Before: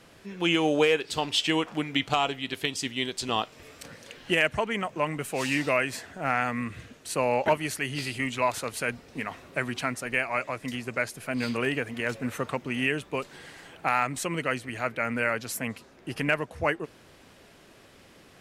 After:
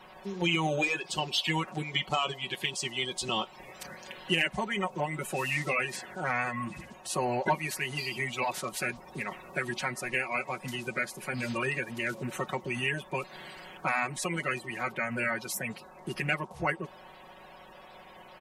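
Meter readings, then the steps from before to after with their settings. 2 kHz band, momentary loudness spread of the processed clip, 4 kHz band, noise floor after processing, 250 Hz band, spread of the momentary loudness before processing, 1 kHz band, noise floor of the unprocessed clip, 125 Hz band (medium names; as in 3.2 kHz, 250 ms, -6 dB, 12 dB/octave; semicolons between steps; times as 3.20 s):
-2.0 dB, 15 LU, -2.0 dB, -52 dBFS, -5.5 dB, 11 LU, -3.0 dB, -55 dBFS, -1.0 dB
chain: coarse spectral quantiser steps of 30 dB; in parallel at +0.5 dB: compression, threshold -33 dBFS, peak gain reduction 14 dB; on the sum: band noise 520–1100 Hz -49 dBFS; comb 5.4 ms, depth 82%; trim -7.5 dB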